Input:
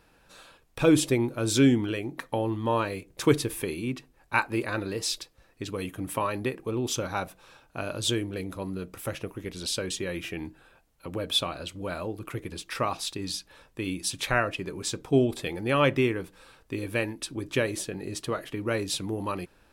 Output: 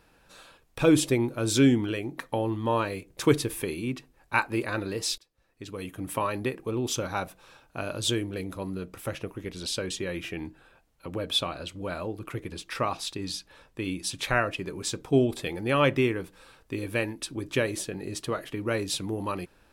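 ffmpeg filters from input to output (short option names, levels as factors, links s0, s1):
-filter_complex "[0:a]asettb=1/sr,asplit=3[s0][s1][s2];[s0]atrim=end=8.794[s3];[s1]atrim=start=8.79:end=14.25,asetpts=PTS-STARTPTS,afade=t=in:d=0.004:c=qsin,afade=t=out:st=5.456:d=0.004:c=qsin,highshelf=f=8100:g=-5[s4];[s2]atrim=start=14.246[s5];[s3][s4]acrossfade=d=0.004:c1=hsin:c2=qsin[s6];[s6][s5]acrossfade=d=0.004:c1=qsin:c2=hsin,asplit=2[s7][s8];[s7]atrim=end=5.18,asetpts=PTS-STARTPTS,afade=t=out:st=5.176:d=0.004:c=hsin:silence=0.0749894[s9];[s8]atrim=start=5.18,asetpts=PTS-STARTPTS,afade=t=in:d=0.99:silence=0.0749894[s10];[s9][s10]concat=n=2:v=0:a=1"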